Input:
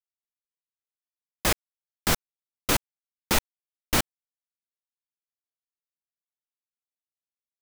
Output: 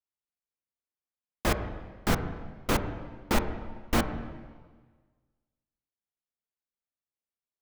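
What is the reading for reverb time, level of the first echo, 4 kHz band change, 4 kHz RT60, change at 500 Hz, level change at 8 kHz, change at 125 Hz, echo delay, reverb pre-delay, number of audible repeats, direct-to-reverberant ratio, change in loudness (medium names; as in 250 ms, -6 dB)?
1.5 s, no echo, -8.0 dB, 1.4 s, +1.0 dB, -10.5 dB, +2.0 dB, no echo, 3 ms, no echo, 10.0 dB, -4.5 dB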